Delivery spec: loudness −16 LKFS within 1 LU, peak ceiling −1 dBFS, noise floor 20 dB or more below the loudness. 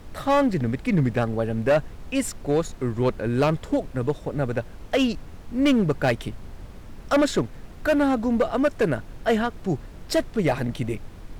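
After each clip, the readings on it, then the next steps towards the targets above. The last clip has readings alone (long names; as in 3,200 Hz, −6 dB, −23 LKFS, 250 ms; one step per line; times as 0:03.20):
share of clipped samples 1.5%; peaks flattened at −14.5 dBFS; background noise floor −42 dBFS; target noise floor −45 dBFS; integrated loudness −24.5 LKFS; sample peak −14.5 dBFS; target loudness −16.0 LKFS
→ clipped peaks rebuilt −14.5 dBFS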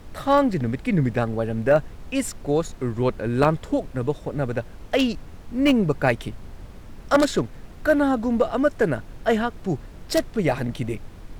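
share of clipped samples 0.0%; background noise floor −42 dBFS; target noise floor −44 dBFS
→ noise reduction from a noise print 6 dB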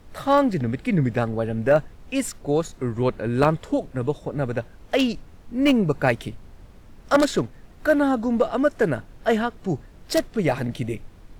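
background noise floor −47 dBFS; integrated loudness −23.5 LKFS; sample peak −5.5 dBFS; target loudness −16.0 LKFS
→ level +7.5 dB
brickwall limiter −1 dBFS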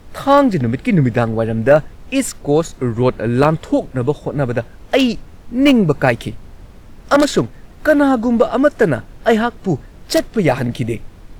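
integrated loudness −16.5 LKFS; sample peak −1.0 dBFS; background noise floor −40 dBFS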